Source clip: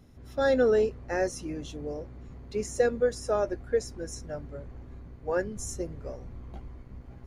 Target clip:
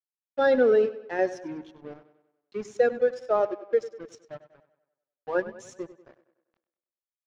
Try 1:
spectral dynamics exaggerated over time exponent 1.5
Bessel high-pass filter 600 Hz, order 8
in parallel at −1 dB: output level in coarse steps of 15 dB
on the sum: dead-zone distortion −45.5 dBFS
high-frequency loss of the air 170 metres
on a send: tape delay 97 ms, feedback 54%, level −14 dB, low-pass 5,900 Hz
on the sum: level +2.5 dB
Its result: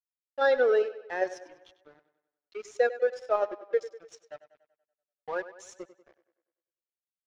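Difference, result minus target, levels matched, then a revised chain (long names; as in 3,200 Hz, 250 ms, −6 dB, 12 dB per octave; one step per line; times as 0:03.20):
250 Hz band −10.0 dB
spectral dynamics exaggerated over time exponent 1.5
Bessel high-pass filter 240 Hz, order 8
in parallel at −1 dB: output level in coarse steps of 15 dB
on the sum: dead-zone distortion −45.5 dBFS
high-frequency loss of the air 170 metres
on a send: tape delay 97 ms, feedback 54%, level −14 dB, low-pass 5,900 Hz
on the sum: level +2.5 dB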